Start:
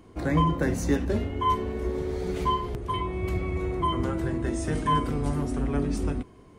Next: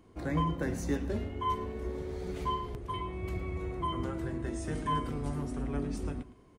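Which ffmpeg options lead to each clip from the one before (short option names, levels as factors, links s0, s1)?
-af "aecho=1:1:110:0.168,volume=0.422"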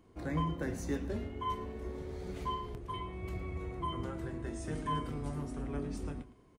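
-filter_complex "[0:a]asplit=2[s0][s1];[s1]adelay=26,volume=0.224[s2];[s0][s2]amix=inputs=2:normalize=0,volume=0.668"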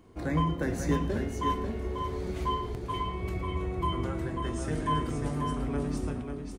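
-af "aecho=1:1:542:0.501,volume=2"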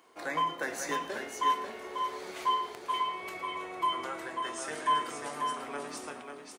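-af "highpass=750,volume=1.68"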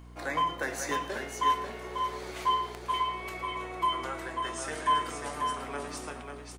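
-af "aeval=exprs='val(0)+0.00355*(sin(2*PI*60*n/s)+sin(2*PI*2*60*n/s)/2+sin(2*PI*3*60*n/s)/3+sin(2*PI*4*60*n/s)/4+sin(2*PI*5*60*n/s)/5)':c=same,volume=1.19"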